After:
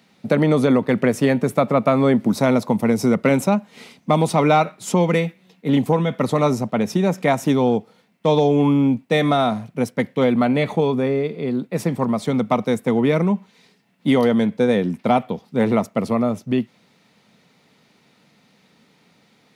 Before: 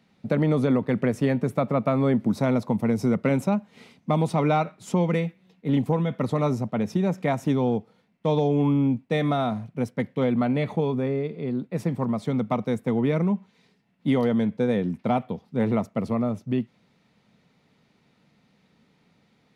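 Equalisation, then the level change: high-pass 210 Hz 6 dB/octave; treble shelf 4.7 kHz +6.5 dB; +7.5 dB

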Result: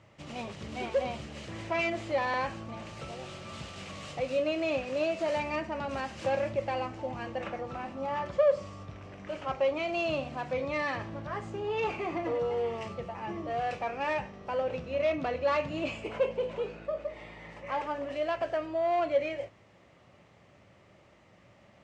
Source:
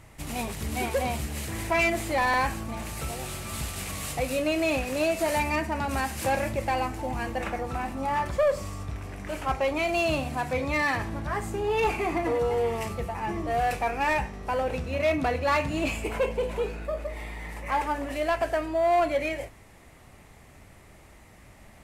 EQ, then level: cabinet simulation 100–6200 Hz, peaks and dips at 110 Hz +5 dB, 180 Hz +5 dB, 350 Hz +3 dB, 560 Hz +9 dB, 1.2 kHz +4 dB, 3 kHz +5 dB; -8.5 dB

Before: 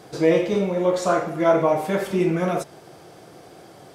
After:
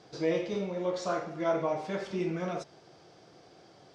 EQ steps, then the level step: four-pole ladder low-pass 6.4 kHz, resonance 40%; -3.0 dB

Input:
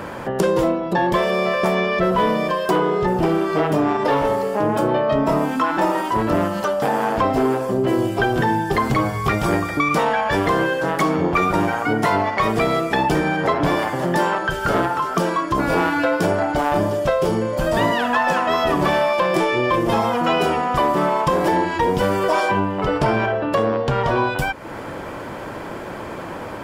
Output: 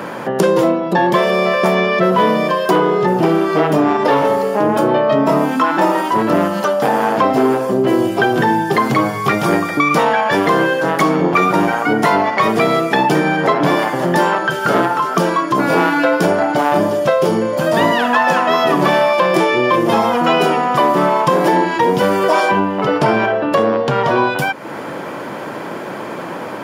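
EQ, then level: high-pass 140 Hz 24 dB/octave; band-stop 7.9 kHz, Q 12; +5.0 dB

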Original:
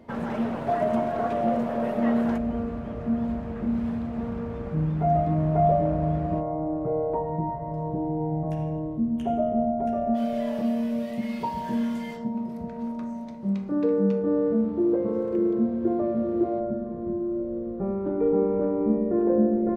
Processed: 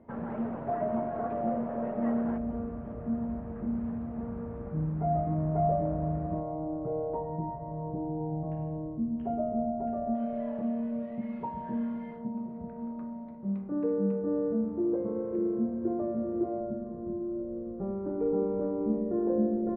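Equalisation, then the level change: low-pass 1.7 kHz 12 dB/octave; distance through air 260 m; -5.5 dB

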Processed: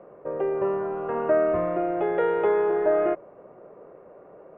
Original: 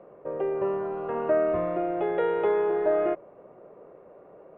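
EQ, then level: low-pass 3 kHz 12 dB/octave; peaking EQ 1.5 kHz +2 dB; +2.0 dB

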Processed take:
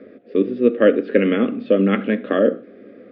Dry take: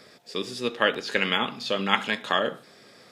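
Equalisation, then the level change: cabinet simulation 180–2600 Hz, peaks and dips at 200 Hz +8 dB, 280 Hz +7 dB, 530 Hz +6 dB, 1.2 kHz +3 dB; tilt EQ -4.5 dB/octave; static phaser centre 380 Hz, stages 4; +5.5 dB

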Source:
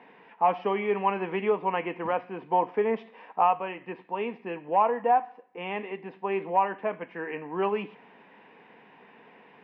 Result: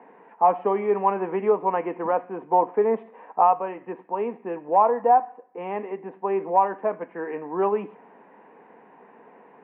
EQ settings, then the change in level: Bessel high-pass 270 Hz, order 2; low-pass 1.2 kHz 12 dB/octave; distance through air 160 m; +6.5 dB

